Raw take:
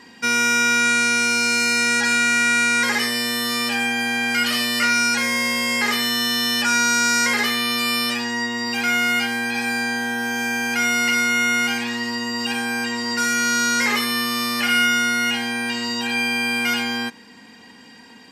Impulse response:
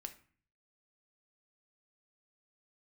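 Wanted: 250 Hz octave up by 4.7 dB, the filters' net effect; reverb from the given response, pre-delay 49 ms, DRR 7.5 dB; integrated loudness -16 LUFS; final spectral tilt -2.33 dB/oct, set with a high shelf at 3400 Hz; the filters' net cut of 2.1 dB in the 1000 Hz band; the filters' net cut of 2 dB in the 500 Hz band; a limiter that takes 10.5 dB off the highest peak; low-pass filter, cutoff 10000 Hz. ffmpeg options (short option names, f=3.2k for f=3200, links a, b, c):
-filter_complex "[0:a]lowpass=10k,equalizer=f=250:t=o:g=5.5,equalizer=f=500:t=o:g=-3,equalizer=f=1k:t=o:g=-5,highshelf=f=3.4k:g=7.5,alimiter=limit=-16dB:level=0:latency=1,asplit=2[a][b];[1:a]atrim=start_sample=2205,adelay=49[c];[b][c]afir=irnorm=-1:irlink=0,volume=-3.5dB[d];[a][d]amix=inputs=2:normalize=0,volume=6dB"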